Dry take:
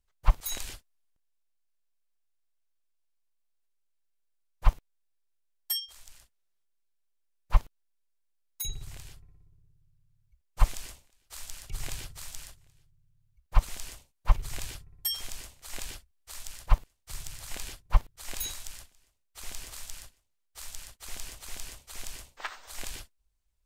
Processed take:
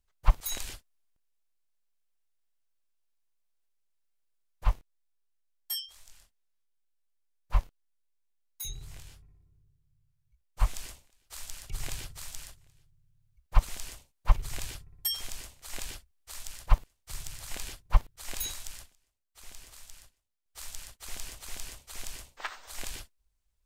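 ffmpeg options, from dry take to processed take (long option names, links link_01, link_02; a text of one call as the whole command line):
ffmpeg -i in.wav -filter_complex "[0:a]asettb=1/sr,asplit=3[link_01][link_02][link_03];[link_01]atrim=end=4.644[link_04];[link_02]atrim=start=4.64:end=10.75,asetpts=PTS-STARTPTS,afade=type=in:duration=0.004:curve=qsin,afade=type=out:start_time=6.106:duration=0.004:curve=qsin,flanger=delay=19.5:depth=5.2:speed=2.8[link_05];[link_03]atrim=start=10.746[link_06];[link_04][link_05]acrossfade=duration=0.004:curve1=hsin:curve2=qsin[link_07];[link_07][link_06]acrossfade=duration=0.004:curve1=qsin:curve2=hsin,asplit=3[link_08][link_09][link_10];[link_08]atrim=end=18.95,asetpts=PTS-STARTPTS,afade=type=out:start_time=18.77:duration=0.18:curve=log:silence=0.398107[link_11];[link_09]atrim=start=18.95:end=20.46,asetpts=PTS-STARTPTS,volume=-8dB[link_12];[link_10]atrim=start=20.46,asetpts=PTS-STARTPTS,afade=type=in:duration=0.18:curve=log:silence=0.398107[link_13];[link_11][link_12][link_13]concat=n=3:v=0:a=1" out.wav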